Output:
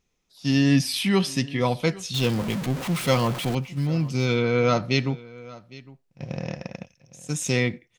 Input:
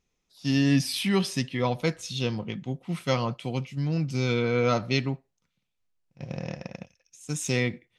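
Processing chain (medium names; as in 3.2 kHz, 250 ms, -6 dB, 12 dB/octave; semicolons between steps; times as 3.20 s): 2.14–3.55 s: jump at every zero crossing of -30 dBFS; delay 808 ms -20.5 dB; trim +3 dB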